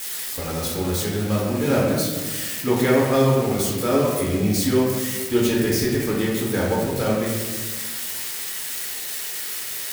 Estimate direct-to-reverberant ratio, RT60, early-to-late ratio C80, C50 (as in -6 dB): -5.5 dB, 1.4 s, 3.0 dB, 0.5 dB